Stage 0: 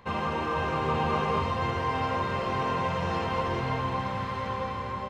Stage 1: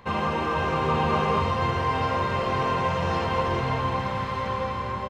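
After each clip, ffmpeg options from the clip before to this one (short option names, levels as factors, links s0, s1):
-filter_complex "[0:a]asplit=2[s0][s1];[s1]adelay=44,volume=0.224[s2];[s0][s2]amix=inputs=2:normalize=0,volume=1.5"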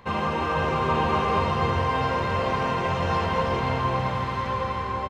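-filter_complex "[0:a]asplit=2[s0][s1];[s1]adelay=332.4,volume=0.501,highshelf=f=4000:g=-7.48[s2];[s0][s2]amix=inputs=2:normalize=0"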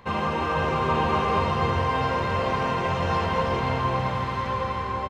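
-af anull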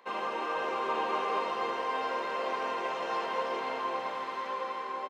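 -af "highpass=f=310:w=0.5412,highpass=f=310:w=1.3066,volume=0.447"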